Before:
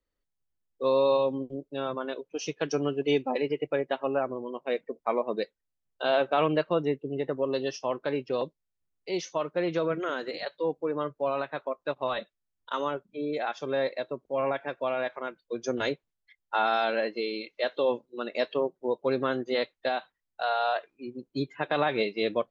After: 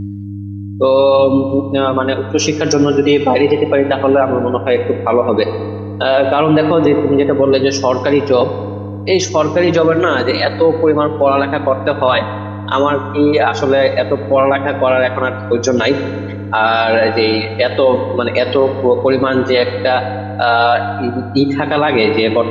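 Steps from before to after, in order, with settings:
hum with harmonics 100 Hz, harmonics 3, −43 dBFS −5 dB per octave
reverb reduction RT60 0.53 s
feedback delay network reverb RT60 2.1 s, low-frequency decay 0.9×, high-frequency decay 0.55×, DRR 10 dB
boost into a limiter +22 dB
level −1.5 dB

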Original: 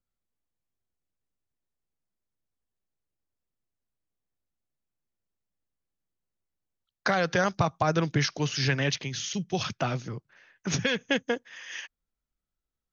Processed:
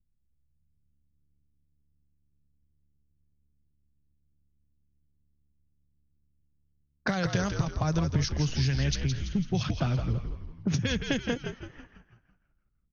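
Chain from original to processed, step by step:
low-pass that shuts in the quiet parts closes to 390 Hz, open at −21 dBFS
bass and treble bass +14 dB, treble +11 dB
downward compressor, threshold −25 dBFS, peak gain reduction 15.5 dB
echo with shifted repeats 166 ms, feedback 48%, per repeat −72 Hz, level −6.5 dB
one half of a high-frequency compander decoder only

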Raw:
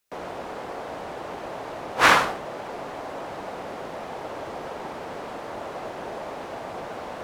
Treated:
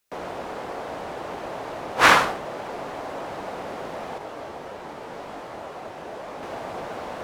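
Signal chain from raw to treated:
0:04.18–0:06.43: micro pitch shift up and down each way 31 cents
level +1.5 dB

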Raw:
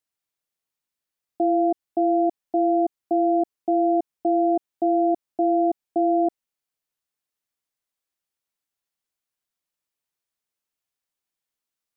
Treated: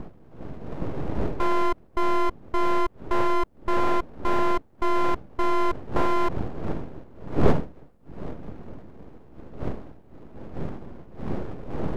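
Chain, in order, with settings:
wind on the microphone 220 Hz −29 dBFS
full-wave rectification

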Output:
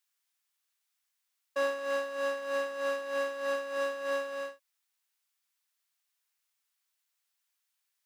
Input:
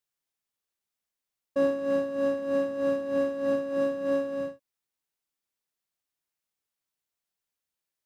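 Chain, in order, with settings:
high-pass filter 1,100 Hz 12 dB per octave
level +6.5 dB

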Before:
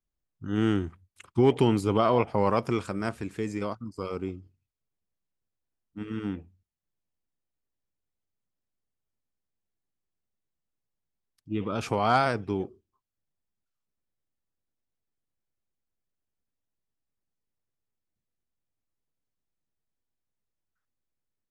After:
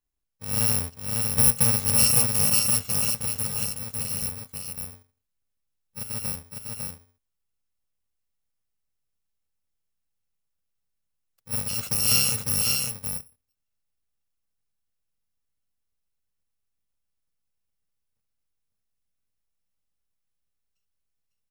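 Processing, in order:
samples in bit-reversed order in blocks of 128 samples
on a send: single-tap delay 552 ms −3.5 dB
on the sum: level +1.5 dB

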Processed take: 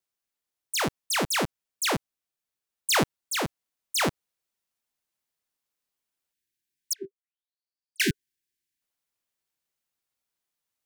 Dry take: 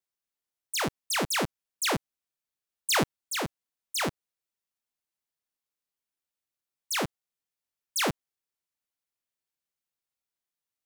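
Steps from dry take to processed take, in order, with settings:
speech leveller 2 s
0:06.33–0:08.82: time-frequency box erased 410–1,500 Hz
0:06.93–0:08.00: envelope filter 390–4,800 Hz, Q 11, down, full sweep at −26.5 dBFS
level +2 dB

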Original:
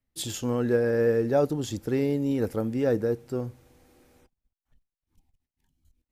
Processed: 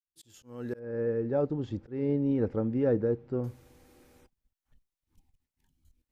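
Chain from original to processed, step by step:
fade in at the beginning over 1.99 s
notch filter 690 Hz, Q 12
volume swells 235 ms
0:00.79–0:03.44: head-to-tape spacing loss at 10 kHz 39 dB

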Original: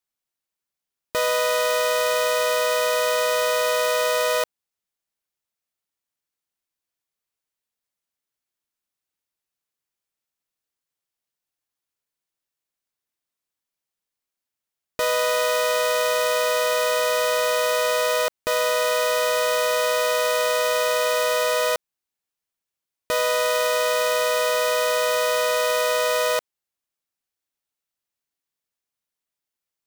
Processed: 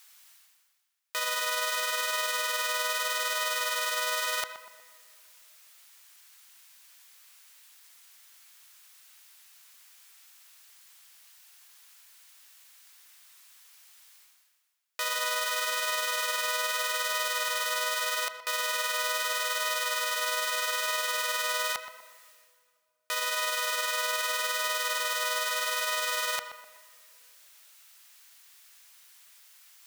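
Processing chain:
high-pass filter 1,300 Hz 12 dB per octave
brickwall limiter −21 dBFS, peak gain reduction 12 dB
reversed playback
upward compression, threshold −38 dBFS
reversed playback
tape delay 123 ms, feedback 47%, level −8 dB, low-pass 1,800 Hz
on a send at −19.5 dB: convolution reverb RT60 2.6 s, pre-delay 70 ms
on the sum: level +4 dB

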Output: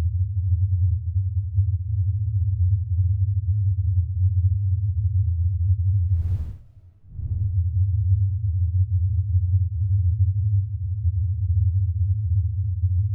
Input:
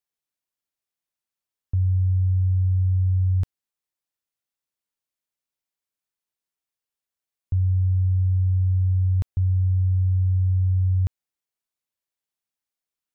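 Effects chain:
low-shelf EQ 150 Hz +9.5 dB
comb and all-pass reverb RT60 0.51 s, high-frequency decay 0.55×, pre-delay 5 ms, DRR 15.5 dB
extreme stretch with random phases 6.6×, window 0.10 s, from 0:08.26
level −8 dB

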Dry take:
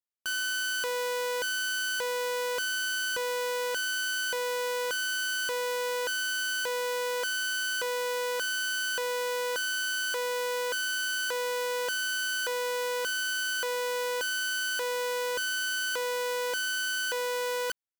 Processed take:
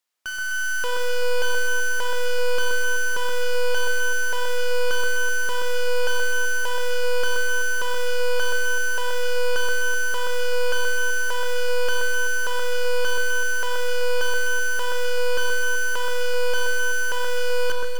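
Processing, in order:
automatic gain control gain up to 11 dB
mid-hump overdrive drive 30 dB, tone 7,500 Hz, clips at −14.5 dBFS
delay that swaps between a low-pass and a high-pass 127 ms, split 1,800 Hz, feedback 64%, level −3 dB
four-comb reverb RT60 1.8 s, combs from 29 ms, DRR 7 dB
level −8.5 dB

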